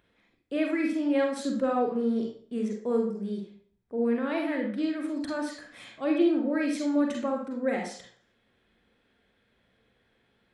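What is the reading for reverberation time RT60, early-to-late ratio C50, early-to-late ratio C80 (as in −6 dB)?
0.50 s, 4.0 dB, 9.5 dB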